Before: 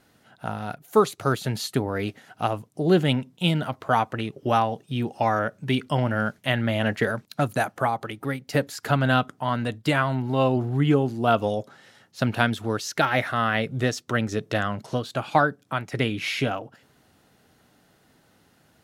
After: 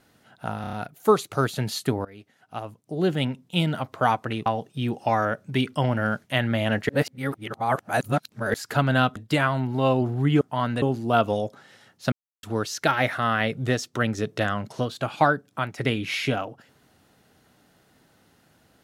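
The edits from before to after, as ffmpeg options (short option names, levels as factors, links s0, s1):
-filter_complex "[0:a]asplit=14[s0][s1][s2][s3][s4][s5][s6][s7][s8][s9][s10][s11][s12][s13];[s0]atrim=end=0.642[s14];[s1]atrim=start=0.608:end=0.642[s15];[s2]atrim=start=0.608:end=0.642[s16];[s3]atrim=start=0.608:end=0.642[s17];[s4]atrim=start=0.608:end=1.93,asetpts=PTS-STARTPTS,afade=t=out:st=1.318:d=0.004:c=hsin:silence=0.0794328[s18];[s5]atrim=start=1.93:end=4.342,asetpts=PTS-STARTPTS,afade=t=in:d=1.75:silence=0.0794328[s19];[s6]atrim=start=4.598:end=7.032[s20];[s7]atrim=start=7.028:end=8.682,asetpts=PTS-STARTPTS,areverse[s21];[s8]atrim=start=8.678:end=9.302[s22];[s9]atrim=start=9.708:end=10.962[s23];[s10]atrim=start=9.298:end=9.712[s24];[s11]atrim=start=10.958:end=12.26,asetpts=PTS-STARTPTS,afade=t=out:st=1.298:d=0.004:c=hsin[s25];[s12]atrim=start=12.26:end=12.57,asetpts=PTS-STARTPTS,volume=0[s26];[s13]atrim=start=12.57,asetpts=PTS-STARTPTS,afade=t=in:d=0.004:c=hsin[s27];[s14][s15]acrossfade=d=0.004:c1=hsin:c2=hsin[s28];[s28][s16]acrossfade=d=0.004:c1=hsin:c2=hsin[s29];[s29][s17]acrossfade=d=0.004:c1=hsin:c2=hsin[s30];[s18][s19]concat=n=2:v=0:a=1[s31];[s30][s31]acrossfade=d=0.004:c1=hsin:c2=hsin[s32];[s32][s20]acrossfade=d=0.004:c1=hsin:c2=hsin[s33];[s33][s21]acrossfade=d=0.004:c1=hsin:c2=hsin[s34];[s34][s22]acrossfade=d=0.004:c1=hsin:c2=hsin[s35];[s35][s23]acrossfade=d=0.004:c1=hsin:c2=hsin[s36];[s36][s24]acrossfade=d=0.004:c1=hsin:c2=hsin[s37];[s25][s26][s27]concat=n=3:v=0:a=1[s38];[s37][s38]acrossfade=d=0.004:c1=hsin:c2=hsin"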